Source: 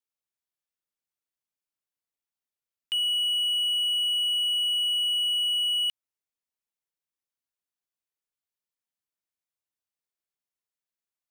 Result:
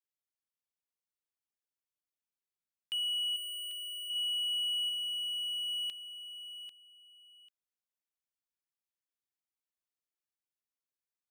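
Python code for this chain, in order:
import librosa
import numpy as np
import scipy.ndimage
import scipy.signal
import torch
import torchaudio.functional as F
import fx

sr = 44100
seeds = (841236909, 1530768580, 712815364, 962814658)

y = fx.pre_emphasis(x, sr, coefficient=0.97, at=(3.36, 4.1))
y = fx.echo_feedback(y, sr, ms=793, feedback_pct=18, wet_db=-11.0)
y = F.gain(torch.from_numpy(y), -7.5).numpy()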